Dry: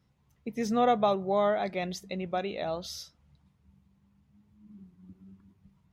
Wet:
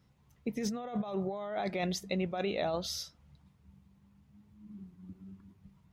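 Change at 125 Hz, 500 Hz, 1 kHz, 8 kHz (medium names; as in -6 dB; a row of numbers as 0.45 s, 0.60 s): +0.5 dB, -6.5 dB, -10.5 dB, +2.0 dB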